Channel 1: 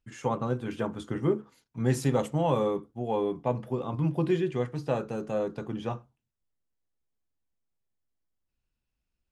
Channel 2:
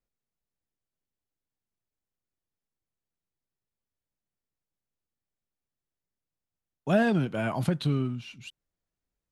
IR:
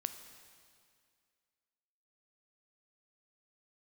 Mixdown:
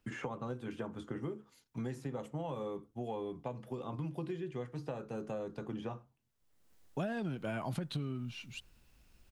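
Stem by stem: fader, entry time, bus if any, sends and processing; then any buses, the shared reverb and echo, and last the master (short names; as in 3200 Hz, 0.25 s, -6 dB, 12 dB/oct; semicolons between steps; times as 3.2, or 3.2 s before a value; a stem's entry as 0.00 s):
-11.0 dB, 0.00 s, no send, three-band squash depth 100%
-2.0 dB, 0.10 s, no send, dry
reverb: off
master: compressor 8:1, threshold -34 dBFS, peak gain reduction 14.5 dB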